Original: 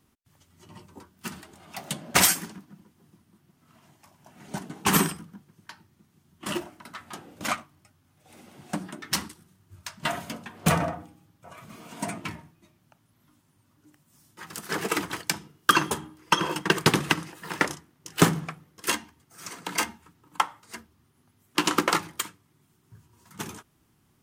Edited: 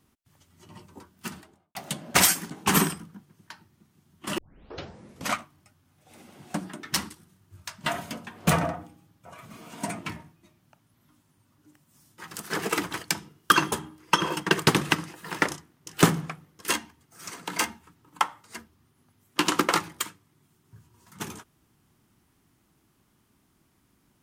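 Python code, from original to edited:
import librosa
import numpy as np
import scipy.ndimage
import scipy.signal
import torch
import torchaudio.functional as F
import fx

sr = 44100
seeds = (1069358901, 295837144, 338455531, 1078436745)

y = fx.studio_fade_out(x, sr, start_s=1.26, length_s=0.49)
y = fx.edit(y, sr, fx.cut(start_s=2.5, length_s=2.19),
    fx.tape_start(start_s=6.57, length_s=0.96), tone=tone)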